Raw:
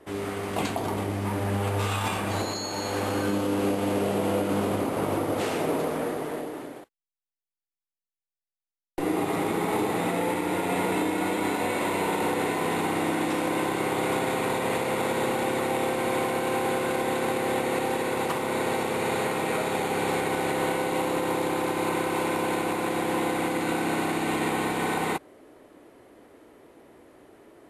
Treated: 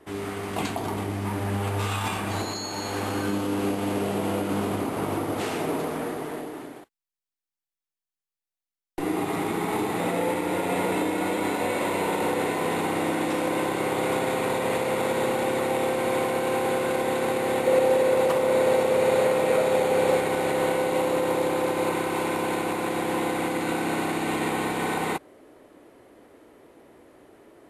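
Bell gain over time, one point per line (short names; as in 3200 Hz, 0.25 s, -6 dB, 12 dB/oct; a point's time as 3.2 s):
bell 540 Hz 0.29 oct
-6.5 dB
from 10 s +4.5 dB
from 17.67 s +15 dB
from 20.17 s +7.5 dB
from 21.91 s +1 dB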